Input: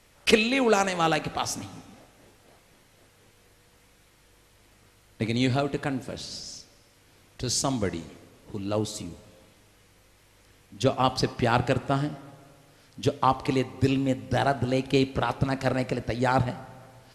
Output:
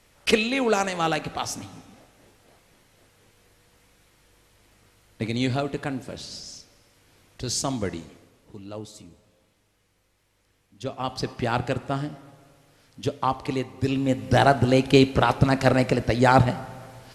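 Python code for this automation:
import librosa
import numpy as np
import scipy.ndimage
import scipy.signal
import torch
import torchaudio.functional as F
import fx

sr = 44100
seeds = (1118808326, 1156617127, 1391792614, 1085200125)

y = fx.gain(x, sr, db=fx.line((7.97, -0.5), (8.77, -9.5), (10.82, -9.5), (11.32, -2.0), (13.84, -2.0), (14.3, 6.5)))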